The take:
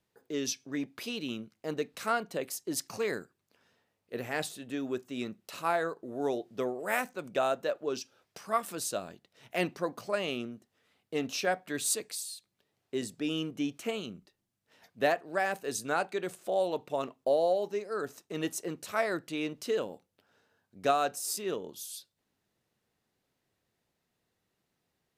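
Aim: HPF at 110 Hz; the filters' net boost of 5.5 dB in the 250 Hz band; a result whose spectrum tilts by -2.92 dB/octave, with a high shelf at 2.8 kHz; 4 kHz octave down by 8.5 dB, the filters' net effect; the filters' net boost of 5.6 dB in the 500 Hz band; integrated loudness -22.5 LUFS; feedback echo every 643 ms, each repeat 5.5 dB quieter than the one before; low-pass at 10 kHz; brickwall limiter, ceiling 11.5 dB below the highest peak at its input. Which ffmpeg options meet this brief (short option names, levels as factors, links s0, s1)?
-af "highpass=110,lowpass=10000,equalizer=f=250:t=o:g=5,equalizer=f=500:t=o:g=6,highshelf=f=2800:g=-3.5,equalizer=f=4000:t=o:g=-9,alimiter=limit=0.0841:level=0:latency=1,aecho=1:1:643|1286|1929|2572|3215|3858|4501:0.531|0.281|0.149|0.079|0.0419|0.0222|0.0118,volume=2.99"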